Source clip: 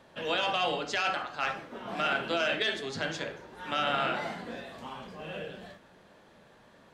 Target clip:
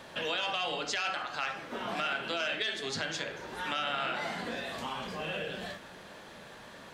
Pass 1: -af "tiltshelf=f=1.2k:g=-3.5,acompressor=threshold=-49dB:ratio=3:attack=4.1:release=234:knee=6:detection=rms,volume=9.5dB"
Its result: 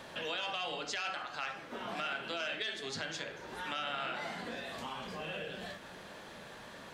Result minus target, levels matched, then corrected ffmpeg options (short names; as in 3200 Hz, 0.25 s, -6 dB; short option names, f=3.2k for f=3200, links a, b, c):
compressor: peak gain reduction +4.5 dB
-af "tiltshelf=f=1.2k:g=-3.5,acompressor=threshold=-42dB:ratio=3:attack=4.1:release=234:knee=6:detection=rms,volume=9.5dB"